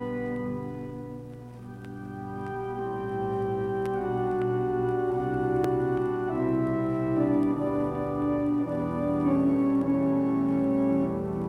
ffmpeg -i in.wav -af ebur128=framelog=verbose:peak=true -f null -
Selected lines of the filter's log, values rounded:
Integrated loudness:
  I:         -27.5 LUFS
  Threshold: -37.9 LUFS
Loudness range:
  LRA:         7.6 LU
  Threshold: -47.9 LUFS
  LRA low:   -33.6 LUFS
  LRA high:  -26.0 LUFS
True peak:
  Peak:      -14.8 dBFS